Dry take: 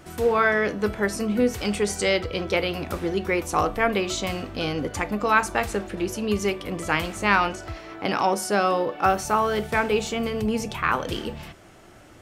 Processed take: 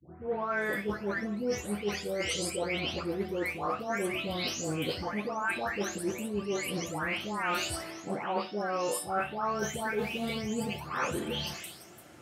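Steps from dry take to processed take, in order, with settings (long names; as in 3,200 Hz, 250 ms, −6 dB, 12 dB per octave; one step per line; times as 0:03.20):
every frequency bin delayed by itself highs late, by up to 551 ms
reversed playback
downward compressor 6 to 1, threshold −34 dBFS, peak gain reduction 16.5 dB
reversed playback
high-pass filter 84 Hz 24 dB per octave
flutter between parallel walls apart 10.8 metres, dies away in 0.23 s
multiband upward and downward expander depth 40%
level +4 dB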